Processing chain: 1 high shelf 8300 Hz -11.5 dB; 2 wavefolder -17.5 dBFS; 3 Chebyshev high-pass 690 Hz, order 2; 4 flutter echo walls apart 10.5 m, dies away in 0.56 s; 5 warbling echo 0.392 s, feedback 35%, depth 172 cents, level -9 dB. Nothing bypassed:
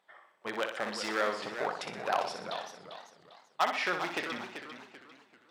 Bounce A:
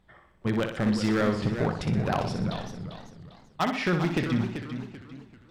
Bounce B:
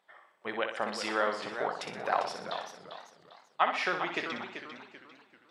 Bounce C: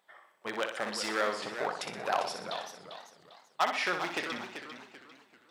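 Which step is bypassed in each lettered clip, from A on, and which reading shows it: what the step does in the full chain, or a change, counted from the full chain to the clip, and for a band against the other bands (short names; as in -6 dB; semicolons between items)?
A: 3, 125 Hz band +25.5 dB; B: 2, distortion -14 dB; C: 1, 8 kHz band +3.5 dB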